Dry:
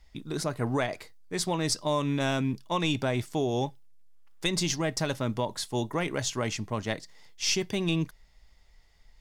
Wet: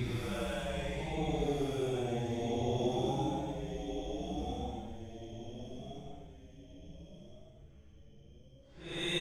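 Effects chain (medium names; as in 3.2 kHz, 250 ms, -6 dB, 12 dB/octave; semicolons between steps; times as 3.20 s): level-controlled noise filter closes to 2.5 kHz, open at -27 dBFS; frequency-shifting echo 190 ms, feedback 44%, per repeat -66 Hz, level -4 dB; Paulstretch 7.2×, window 0.10 s, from 3.19 s; trim -7.5 dB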